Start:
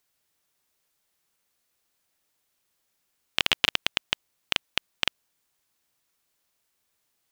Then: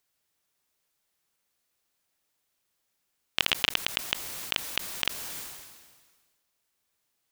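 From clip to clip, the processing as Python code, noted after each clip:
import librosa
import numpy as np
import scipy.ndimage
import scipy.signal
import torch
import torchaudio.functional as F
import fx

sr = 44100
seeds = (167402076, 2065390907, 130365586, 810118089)

y = fx.sustainer(x, sr, db_per_s=38.0)
y = F.gain(torch.from_numpy(y), -2.5).numpy()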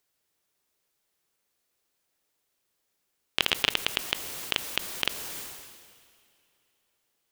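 y = fx.peak_eq(x, sr, hz=410.0, db=4.5, octaves=0.94)
y = fx.rev_plate(y, sr, seeds[0], rt60_s=3.3, hf_ratio=0.95, predelay_ms=0, drr_db=17.5)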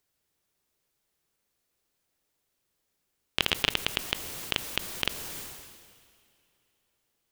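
y = fx.low_shelf(x, sr, hz=230.0, db=8.0)
y = F.gain(torch.from_numpy(y), -1.5).numpy()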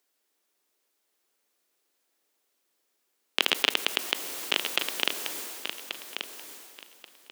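y = scipy.signal.sosfilt(scipy.signal.butter(4, 260.0, 'highpass', fs=sr, output='sos'), x)
y = fx.echo_feedback(y, sr, ms=1133, feedback_pct=20, wet_db=-8)
y = F.gain(torch.from_numpy(y), 2.5).numpy()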